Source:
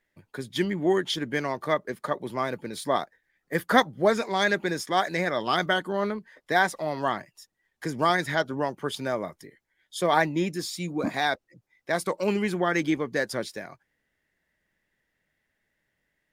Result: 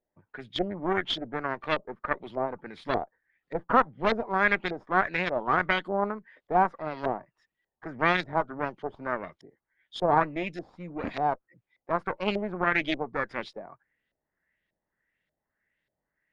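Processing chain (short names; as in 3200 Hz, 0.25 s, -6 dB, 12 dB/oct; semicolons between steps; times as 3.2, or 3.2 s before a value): added harmonics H 6 -11 dB, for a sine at -4 dBFS; LFO low-pass saw up 1.7 Hz 590–4000 Hz; gain -7 dB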